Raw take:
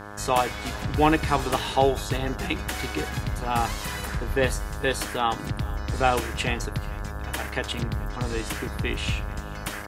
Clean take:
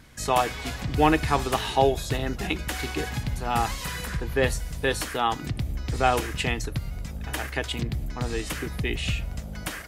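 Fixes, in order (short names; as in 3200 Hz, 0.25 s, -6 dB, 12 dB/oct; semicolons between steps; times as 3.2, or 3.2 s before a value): de-hum 103 Hz, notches 17; 4.27–4.39 HPF 140 Hz 24 dB/oct; inverse comb 0.437 s -21 dB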